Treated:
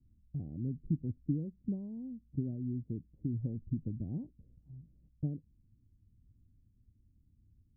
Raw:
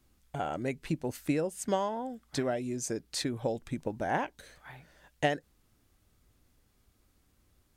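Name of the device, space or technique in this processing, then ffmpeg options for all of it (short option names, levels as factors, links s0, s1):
the neighbour's flat through the wall: -af "lowpass=f=250:w=0.5412,lowpass=f=250:w=1.3066,equalizer=f=100:t=o:w=0.78:g=6,volume=1.12"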